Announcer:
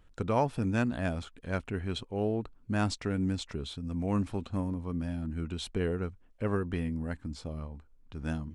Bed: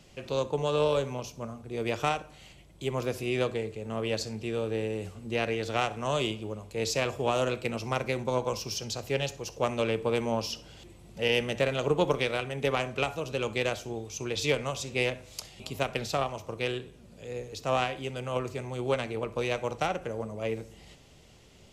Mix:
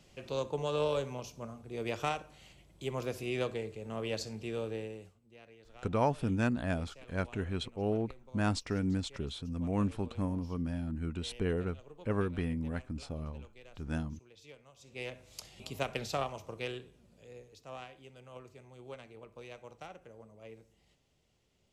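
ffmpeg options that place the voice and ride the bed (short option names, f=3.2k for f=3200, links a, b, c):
-filter_complex "[0:a]adelay=5650,volume=-1.5dB[a];[1:a]volume=16.5dB,afade=t=out:st=4.62:d=0.57:silence=0.0841395,afade=t=in:st=14.76:d=0.81:silence=0.0794328,afade=t=out:st=16.21:d=1.42:silence=0.211349[b];[a][b]amix=inputs=2:normalize=0"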